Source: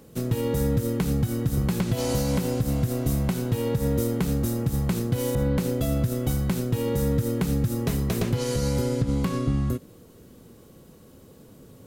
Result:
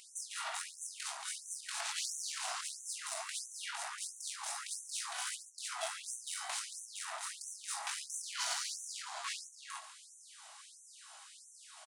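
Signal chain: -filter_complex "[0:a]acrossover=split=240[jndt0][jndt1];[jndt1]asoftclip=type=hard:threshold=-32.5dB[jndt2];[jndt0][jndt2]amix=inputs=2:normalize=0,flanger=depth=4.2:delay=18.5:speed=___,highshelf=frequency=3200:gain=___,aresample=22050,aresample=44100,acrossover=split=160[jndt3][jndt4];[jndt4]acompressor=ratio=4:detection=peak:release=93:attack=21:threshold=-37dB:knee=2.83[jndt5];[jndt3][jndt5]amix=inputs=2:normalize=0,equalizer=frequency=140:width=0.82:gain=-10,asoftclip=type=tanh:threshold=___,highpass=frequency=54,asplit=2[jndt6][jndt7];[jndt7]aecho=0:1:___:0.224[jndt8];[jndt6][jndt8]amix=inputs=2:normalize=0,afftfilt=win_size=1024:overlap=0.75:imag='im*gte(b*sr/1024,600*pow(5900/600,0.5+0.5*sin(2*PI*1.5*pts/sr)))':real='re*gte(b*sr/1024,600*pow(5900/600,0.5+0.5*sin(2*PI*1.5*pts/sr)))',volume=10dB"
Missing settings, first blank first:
2.6, 2, -32dB, 141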